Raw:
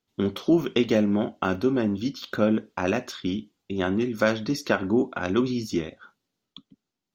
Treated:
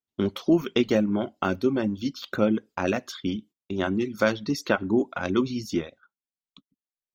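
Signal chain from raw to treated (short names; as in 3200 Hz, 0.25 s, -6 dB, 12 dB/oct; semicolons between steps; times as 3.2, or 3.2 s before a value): gate -44 dBFS, range -16 dB; reverb removal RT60 0.59 s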